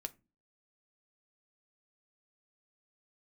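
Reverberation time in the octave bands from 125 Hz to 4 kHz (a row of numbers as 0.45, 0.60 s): 0.45, 0.50, 0.30, 0.25, 0.25, 0.15 s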